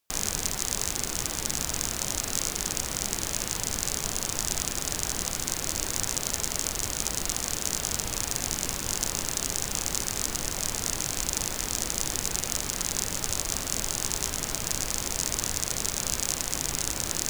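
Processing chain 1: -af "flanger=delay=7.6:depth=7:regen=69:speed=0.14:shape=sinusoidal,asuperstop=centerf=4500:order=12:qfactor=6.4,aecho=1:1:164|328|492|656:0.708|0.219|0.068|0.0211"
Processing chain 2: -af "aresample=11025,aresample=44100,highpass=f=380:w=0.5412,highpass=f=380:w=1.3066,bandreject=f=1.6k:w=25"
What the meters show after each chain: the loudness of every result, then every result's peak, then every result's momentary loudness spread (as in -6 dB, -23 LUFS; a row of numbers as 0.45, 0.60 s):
-30.5, -35.5 LUFS; -11.5, -16.0 dBFS; 1, 1 LU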